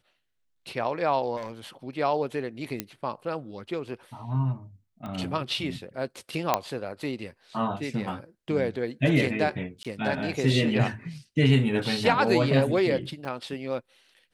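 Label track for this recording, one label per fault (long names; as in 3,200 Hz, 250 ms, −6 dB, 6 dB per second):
1.360000	1.520000	clipping −30 dBFS
2.800000	2.800000	click −12 dBFS
5.060000	5.060000	click −25 dBFS
6.540000	6.540000	click −7 dBFS
9.830000	9.850000	drop-out 17 ms
13.250000	13.250000	drop-out 2.4 ms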